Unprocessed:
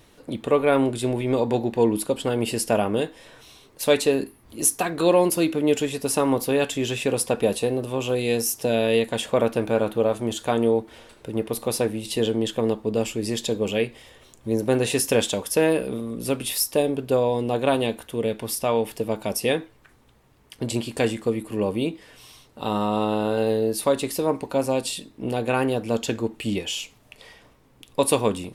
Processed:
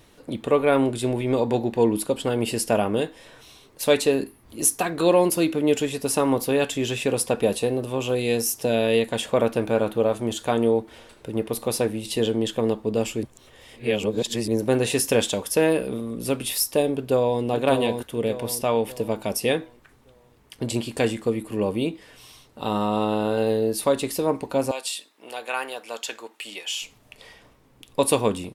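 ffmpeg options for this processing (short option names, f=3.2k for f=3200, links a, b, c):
-filter_complex "[0:a]asplit=2[a][b];[b]afade=t=in:st=16.94:d=0.01,afade=t=out:st=17.43:d=0.01,aecho=0:1:590|1180|1770|2360|2950:0.530884|0.212354|0.0849415|0.0339766|0.0135906[c];[a][c]amix=inputs=2:normalize=0,asettb=1/sr,asplit=3[d][e][f];[d]atrim=end=24.714[g];[e]atrim=start=24.71:end=26.82,asetpts=PTS-STARTPTS,afade=t=in:d=0.004:c=qsin,afade=t=out:st=2.106:d=0.004:c=qsin,highpass=890[h];[f]atrim=start=26.816[i];[g][h]acrossfade=d=0.004:c1=hsin:c2=qsin[j];[j][i]acrossfade=d=0.004:c1=qsin:c2=hsin,asplit=3[k][l][m];[k]atrim=end=13.232[n];[l]atrim=start=13.228:end=14.482,asetpts=PTS-STARTPTS,areverse[o];[m]atrim=start=14.478[p];[n][o]acrossfade=d=0.004:c1=hsin:c2=hsin[q];[q][p]acrossfade=d=0.004:c1=hsin:c2=hsin"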